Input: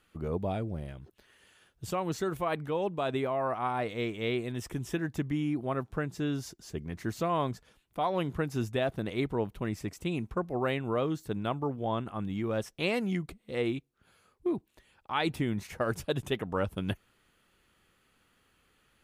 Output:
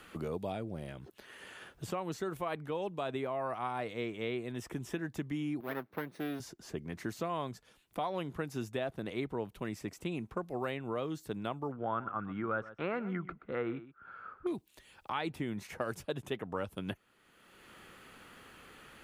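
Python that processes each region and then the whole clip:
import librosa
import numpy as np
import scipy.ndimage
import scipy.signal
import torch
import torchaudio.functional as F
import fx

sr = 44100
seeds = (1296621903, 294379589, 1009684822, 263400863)

y = fx.chain(x, sr, fx.lower_of_two(delay_ms=0.49),
    fx.bandpass_edges(low_hz=240.0, high_hz=4100.0),
    fx.resample_bad(factor=3, down='filtered', up='hold'), at=(5.6, 6.4))
y = fx.chain(y, sr, fx.lowpass_res(hz=1400.0, q=7.9),
    fx.echo_single(ms=126, db=-17.0), at=(11.72, 14.47))
y = fx.low_shelf(y, sr, hz=120.0, db=-8.0)
y = fx.band_squash(y, sr, depth_pct=70)
y = y * librosa.db_to_amplitude(-5.0)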